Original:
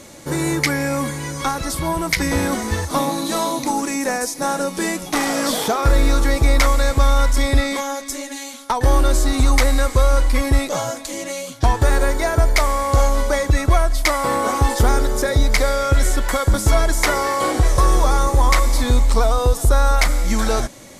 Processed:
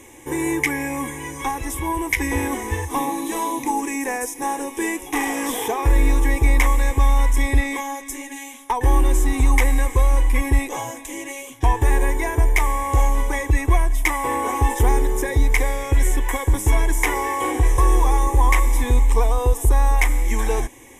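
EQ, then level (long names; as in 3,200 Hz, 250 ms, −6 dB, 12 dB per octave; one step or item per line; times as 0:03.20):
phaser with its sweep stopped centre 910 Hz, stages 8
0.0 dB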